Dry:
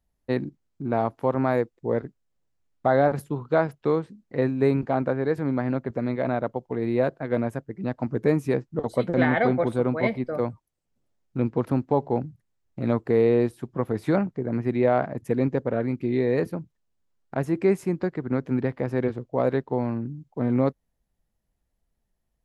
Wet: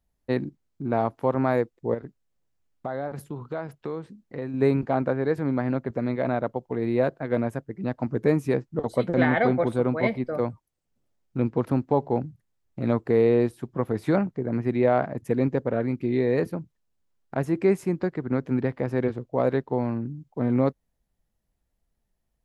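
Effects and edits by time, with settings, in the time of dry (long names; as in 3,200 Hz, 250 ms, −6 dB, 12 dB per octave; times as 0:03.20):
0:01.94–0:04.54: downward compressor 2.5 to 1, threshold −32 dBFS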